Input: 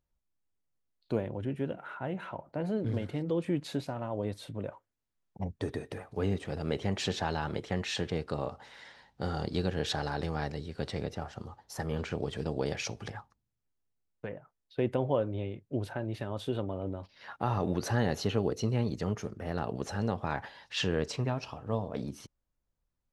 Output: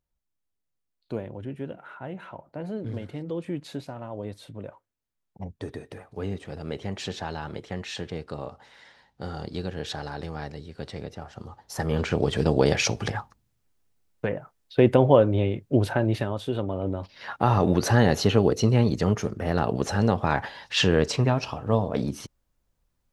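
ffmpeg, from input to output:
-af "volume=7.94,afade=t=in:st=11.26:d=1.23:silence=0.223872,afade=t=out:st=16.11:d=0.3:silence=0.375837,afade=t=in:st=16.41:d=0.75:silence=0.501187"

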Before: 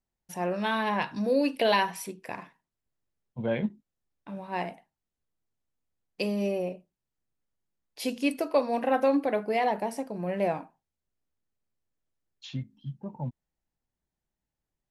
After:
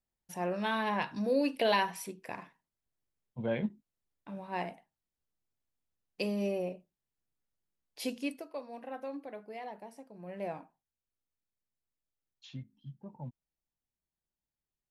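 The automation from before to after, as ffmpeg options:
-af "volume=1.58,afade=t=out:st=8.02:d=0.44:silence=0.223872,afade=t=in:st=10.1:d=0.51:silence=0.398107"

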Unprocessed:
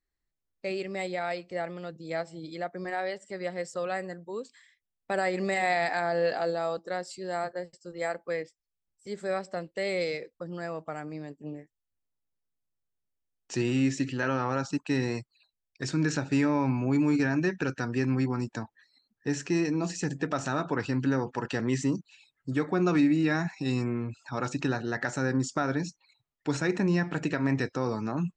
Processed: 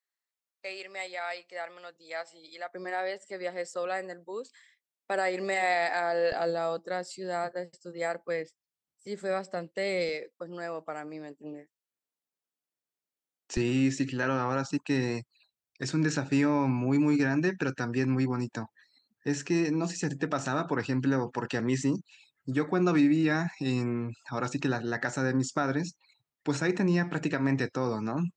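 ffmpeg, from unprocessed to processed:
-af "asetnsamples=n=441:p=0,asendcmd='2.74 highpass f 310;6.32 highpass f 120;10.09 highpass f 260;13.57 highpass f 87',highpass=800"

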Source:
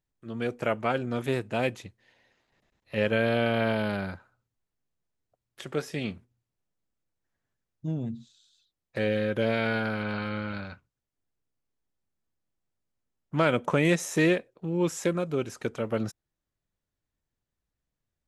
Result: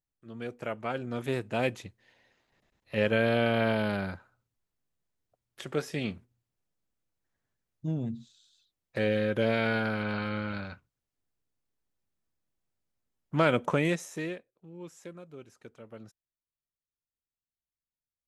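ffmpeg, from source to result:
-af "volume=0.944,afade=t=in:st=0.76:d=0.99:silence=0.446684,afade=t=out:st=13.63:d=0.46:silence=0.316228,afade=t=out:st=14.09:d=0.43:silence=0.421697"

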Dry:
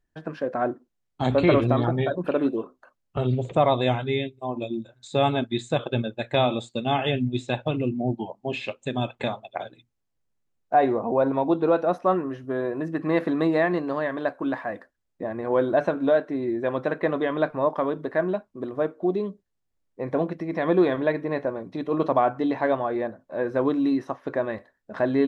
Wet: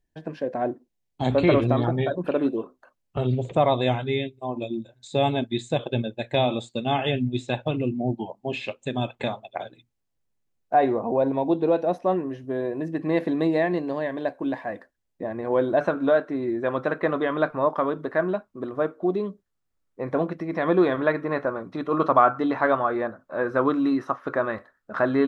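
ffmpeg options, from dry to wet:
-af "asetnsamples=n=441:p=0,asendcmd='1.26 equalizer g -3;4.78 equalizer g -10.5;6.48 equalizer g -2.5;11.16 equalizer g -13;14.67 equalizer g -3.5;15.81 equalizer g 6.5;20.99 equalizer g 15',equalizer=f=1300:t=o:w=0.45:g=-12.5"

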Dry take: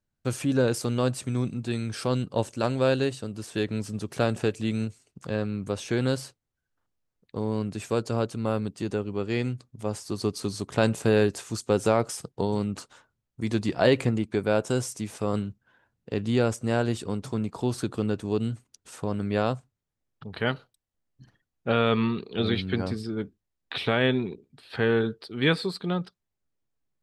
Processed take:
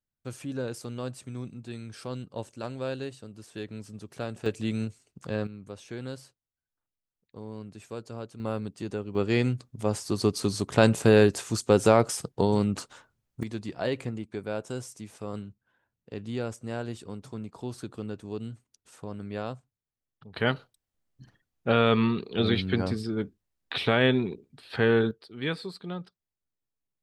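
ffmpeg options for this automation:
-af "asetnsamples=n=441:p=0,asendcmd='4.46 volume volume -2dB;5.47 volume volume -12dB;8.4 volume volume -4.5dB;9.15 volume volume 3dB;13.43 volume volume -9dB;20.36 volume volume 1dB;25.11 volume volume -8dB',volume=0.316"

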